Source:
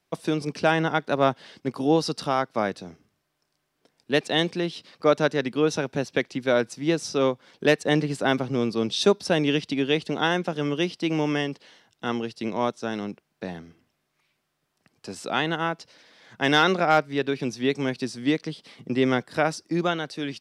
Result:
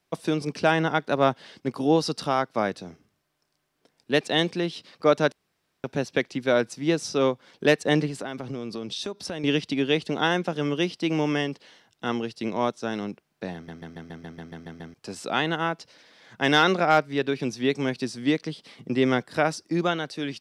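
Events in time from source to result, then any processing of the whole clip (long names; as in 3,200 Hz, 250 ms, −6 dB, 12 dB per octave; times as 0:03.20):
0:05.32–0:05.84: fill with room tone
0:08.08–0:09.44: downward compressor, threshold −29 dBFS
0:13.54: stutter in place 0.14 s, 10 plays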